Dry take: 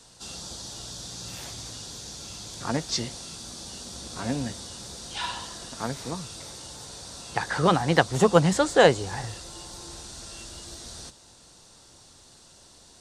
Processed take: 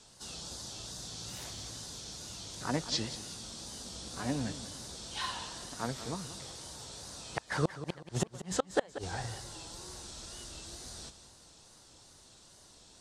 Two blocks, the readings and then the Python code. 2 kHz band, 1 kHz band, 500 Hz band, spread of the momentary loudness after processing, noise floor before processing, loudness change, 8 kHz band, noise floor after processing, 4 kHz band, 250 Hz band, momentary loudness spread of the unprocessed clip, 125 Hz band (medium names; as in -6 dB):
-12.0 dB, -12.5 dB, -14.0 dB, 21 LU, -53 dBFS, -11.5 dB, -5.5 dB, -58 dBFS, -6.5 dB, -10.0 dB, 19 LU, -9.5 dB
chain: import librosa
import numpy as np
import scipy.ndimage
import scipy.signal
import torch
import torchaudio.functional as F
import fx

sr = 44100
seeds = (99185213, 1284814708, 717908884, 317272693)

y = fx.gate_flip(x, sr, shuts_db=-10.0, range_db=-33)
y = fx.wow_flutter(y, sr, seeds[0], rate_hz=2.1, depth_cents=120.0)
y = fx.echo_warbled(y, sr, ms=185, feedback_pct=35, rate_hz=2.8, cents=59, wet_db=-13)
y = y * librosa.db_to_amplitude(-5.0)